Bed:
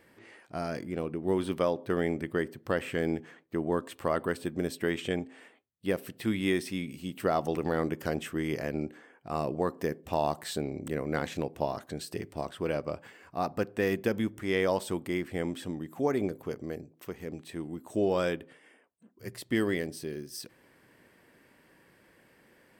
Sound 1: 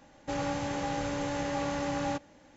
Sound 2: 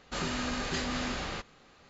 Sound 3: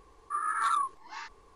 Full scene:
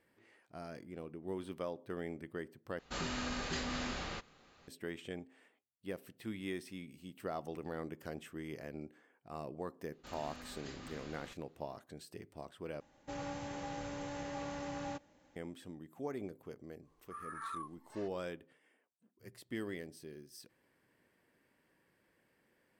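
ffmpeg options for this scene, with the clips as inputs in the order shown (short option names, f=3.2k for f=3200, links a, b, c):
-filter_complex "[2:a]asplit=2[a][b];[0:a]volume=-13dB,asplit=3[c][d][e];[c]atrim=end=2.794[f];[a]atrim=end=1.89,asetpts=PTS-STARTPTS,volume=-5.5dB[g];[d]atrim=start=4.676:end=12.804[h];[1:a]atrim=end=2.56,asetpts=PTS-STARTPTS,volume=-10dB[i];[e]atrim=start=15.356[j];[b]atrim=end=1.89,asetpts=PTS-STARTPTS,volume=-17.5dB,afade=t=in:d=0.004:c=hsin,afade=t=out:st=1.886:d=0.004:c=hsin,adelay=9920[k];[3:a]atrim=end=1.55,asetpts=PTS-STARTPTS,volume=-15.5dB,afade=t=in:d=0.1,afade=t=out:st=1.45:d=0.1,adelay=16800[l];[f][g]acrossfade=d=0.004:c1=hsin:c2=hsin[m];[m][h]acrossfade=d=0.004:c1=hsin:c2=hsin[n];[n][i]acrossfade=d=0.004:c1=hsin:c2=hsin[o];[o][j]acrossfade=d=0.004:c1=hsin:c2=hsin[p];[p][k][l]amix=inputs=3:normalize=0"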